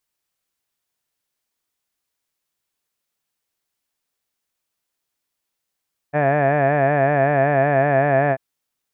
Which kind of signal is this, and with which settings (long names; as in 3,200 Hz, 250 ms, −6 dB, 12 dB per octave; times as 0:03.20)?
vowel by formant synthesis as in had, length 2.24 s, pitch 143 Hz, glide −0.5 semitones